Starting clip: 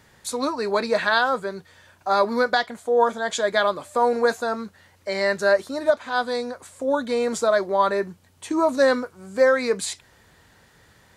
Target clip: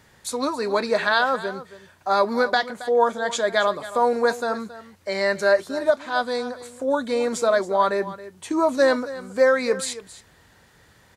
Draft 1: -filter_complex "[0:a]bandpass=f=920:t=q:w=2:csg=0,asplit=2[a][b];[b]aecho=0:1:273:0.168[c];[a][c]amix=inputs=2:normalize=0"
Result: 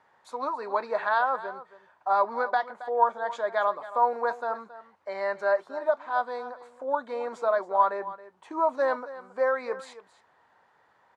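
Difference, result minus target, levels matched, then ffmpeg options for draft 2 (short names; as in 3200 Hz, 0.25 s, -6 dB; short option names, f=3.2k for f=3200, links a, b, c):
1000 Hz band +4.0 dB
-filter_complex "[0:a]asplit=2[a][b];[b]aecho=0:1:273:0.168[c];[a][c]amix=inputs=2:normalize=0"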